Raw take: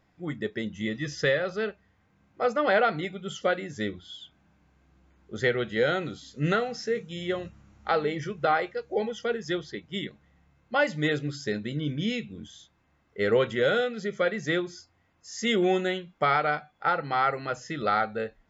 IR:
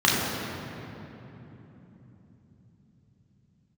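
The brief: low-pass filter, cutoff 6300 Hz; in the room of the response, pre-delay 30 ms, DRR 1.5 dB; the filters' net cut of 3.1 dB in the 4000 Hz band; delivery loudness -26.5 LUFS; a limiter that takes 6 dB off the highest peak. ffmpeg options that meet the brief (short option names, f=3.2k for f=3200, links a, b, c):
-filter_complex "[0:a]lowpass=6.3k,equalizer=f=4k:t=o:g=-3.5,alimiter=limit=-19.5dB:level=0:latency=1,asplit=2[a][b];[1:a]atrim=start_sample=2205,adelay=30[c];[b][c]afir=irnorm=-1:irlink=0,volume=-21dB[d];[a][d]amix=inputs=2:normalize=0,volume=1.5dB"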